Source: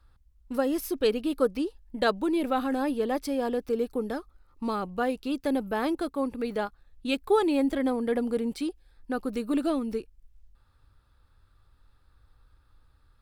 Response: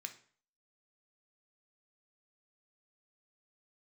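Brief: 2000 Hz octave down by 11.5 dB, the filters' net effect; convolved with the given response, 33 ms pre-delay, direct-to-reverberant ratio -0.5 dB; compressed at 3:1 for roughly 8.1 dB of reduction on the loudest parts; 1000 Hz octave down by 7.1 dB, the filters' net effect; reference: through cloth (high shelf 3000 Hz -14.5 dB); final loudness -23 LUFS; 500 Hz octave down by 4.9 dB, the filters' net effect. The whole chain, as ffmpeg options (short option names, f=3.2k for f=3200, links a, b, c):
-filter_complex "[0:a]equalizer=f=500:t=o:g=-4,equalizer=f=1k:t=o:g=-4.5,equalizer=f=2k:t=o:g=-8.5,acompressor=threshold=-34dB:ratio=3,asplit=2[a][b];[1:a]atrim=start_sample=2205,adelay=33[c];[b][c]afir=irnorm=-1:irlink=0,volume=3.5dB[d];[a][d]amix=inputs=2:normalize=0,highshelf=f=3k:g=-14.5,volume=13.5dB"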